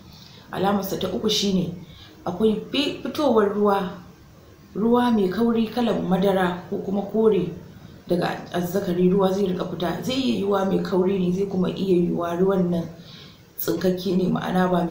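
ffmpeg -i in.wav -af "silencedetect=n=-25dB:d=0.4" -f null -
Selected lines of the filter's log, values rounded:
silence_start: 0.00
silence_end: 0.53 | silence_duration: 0.53
silence_start: 1.70
silence_end: 2.27 | silence_duration: 0.57
silence_start: 3.88
silence_end: 4.76 | silence_duration: 0.88
silence_start: 7.49
silence_end: 8.11 | silence_duration: 0.62
silence_start: 12.86
silence_end: 13.60 | silence_duration: 0.74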